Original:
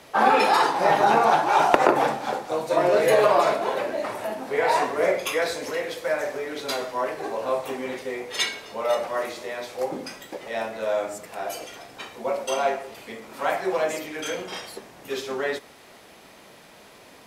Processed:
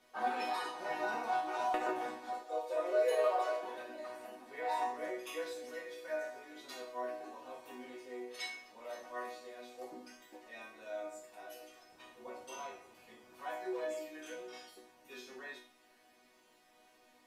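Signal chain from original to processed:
0:02.41–0:03.63: low shelf with overshoot 310 Hz −13.5 dB, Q 3
resonators tuned to a chord B3 major, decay 0.4 s
0:11.90–0:13.43: noise in a band 76–1,100 Hz −72 dBFS
level +2 dB

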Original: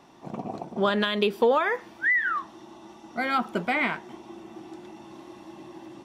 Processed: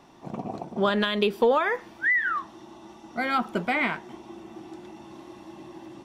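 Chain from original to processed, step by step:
low-shelf EQ 74 Hz +7.5 dB

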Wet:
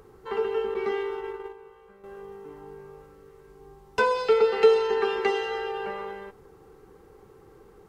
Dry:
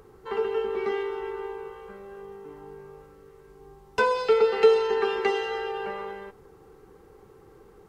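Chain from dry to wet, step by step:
0:00.74–0:02.04: noise gate −33 dBFS, range −10 dB

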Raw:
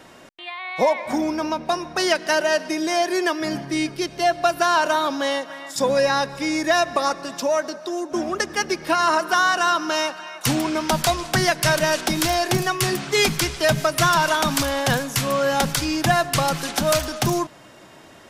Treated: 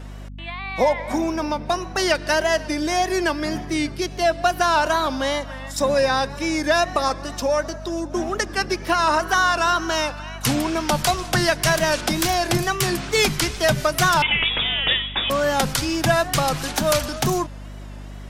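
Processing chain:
tape wow and flutter 93 cents
0:14.22–0:15.30: voice inversion scrambler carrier 3,600 Hz
mains hum 50 Hz, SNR 14 dB

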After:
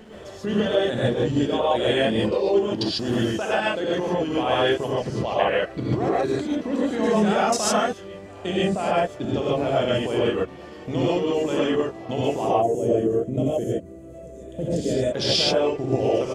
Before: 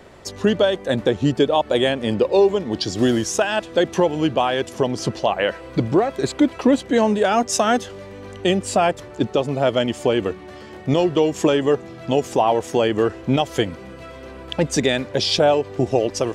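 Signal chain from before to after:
gain on a spectral selection 0:12.46–0:15.01, 720–6,200 Hz −18 dB
output level in coarse steps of 23 dB
backwards echo 491 ms −21.5 dB
reverb whose tail is shaped and stops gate 170 ms rising, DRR −7 dB
pitch-shifted copies added −3 semitones −12 dB
level −4.5 dB

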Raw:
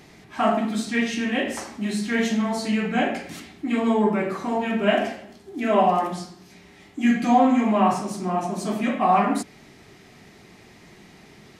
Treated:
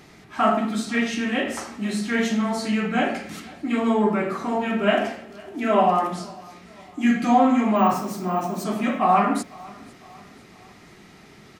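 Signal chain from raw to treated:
0:07.76–0:08.64: bad sample-rate conversion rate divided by 2×, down filtered, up hold
parametric band 1,300 Hz +6.5 dB 0.26 octaves
on a send: repeating echo 503 ms, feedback 49%, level −23 dB

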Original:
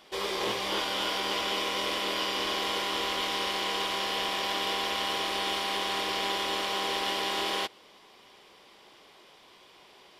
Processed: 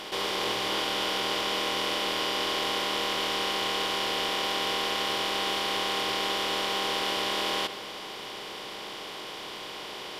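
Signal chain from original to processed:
compressor on every frequency bin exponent 0.4
convolution reverb RT60 2.0 s, pre-delay 6 ms, DRR 12.5 dB
level −3 dB

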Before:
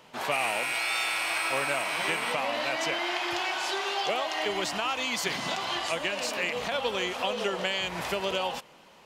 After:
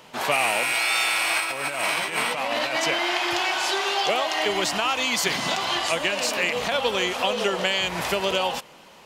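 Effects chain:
high-shelf EQ 5,100 Hz +3.5 dB
0:01.40–0:02.83: compressor whose output falls as the input rises −31 dBFS, ratio −0.5
level +5.5 dB

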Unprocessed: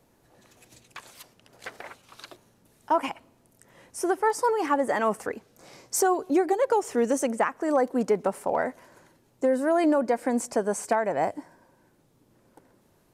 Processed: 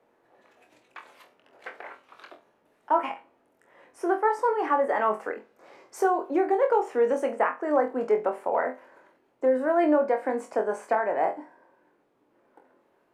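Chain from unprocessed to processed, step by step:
three-way crossover with the lows and the highs turned down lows −21 dB, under 290 Hz, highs −19 dB, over 2,700 Hz
on a send: flutter between parallel walls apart 4 metres, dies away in 0.24 s

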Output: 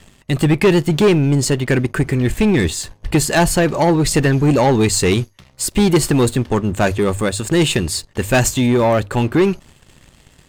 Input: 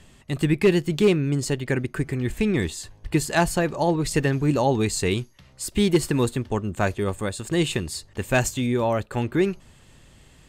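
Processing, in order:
mains-hum notches 50/100 Hz
leveller curve on the samples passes 2
level +3 dB

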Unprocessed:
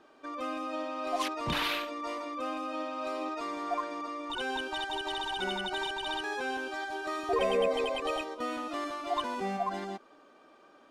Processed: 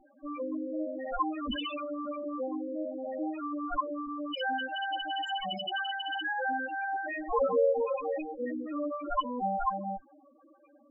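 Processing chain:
lower of the sound and its delayed copy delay 3.7 ms
spectral peaks only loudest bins 4
level +6.5 dB

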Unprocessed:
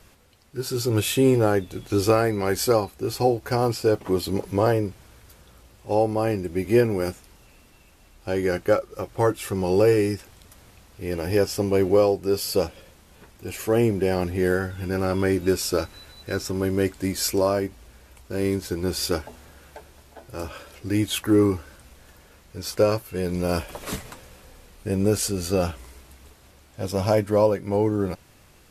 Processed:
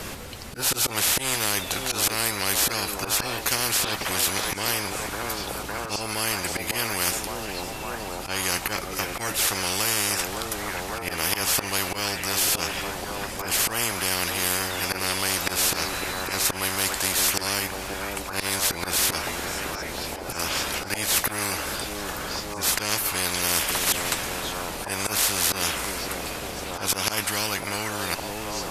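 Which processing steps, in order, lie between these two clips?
volume swells 150 ms
echo through a band-pass that steps 557 ms, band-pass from 400 Hz, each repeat 0.7 octaves, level −8 dB
every bin compressed towards the loudest bin 10 to 1
level +6.5 dB

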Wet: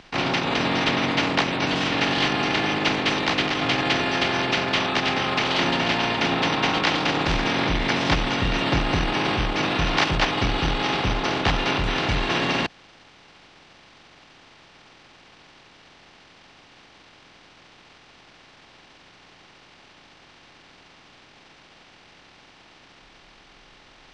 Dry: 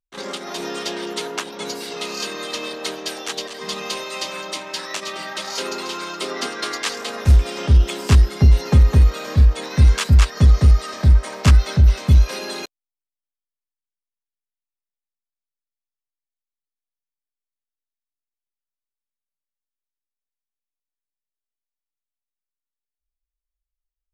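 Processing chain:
compressor on every frequency bin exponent 0.4
pitch shifter −7 semitones
three-way crossover with the lows and the highs turned down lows −18 dB, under 160 Hz, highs −21 dB, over 5,800 Hz

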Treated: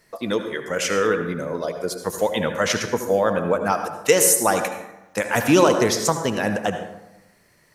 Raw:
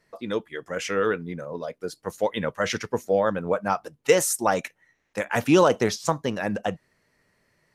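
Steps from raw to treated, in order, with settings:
high-shelf EQ 6,400 Hz +10.5 dB
in parallel at +1 dB: downward compressor, threshold −30 dBFS, peak gain reduction 16.5 dB
on the sum: convolution reverb RT60 1.0 s, pre-delay 63 ms, DRR 6.5 dB

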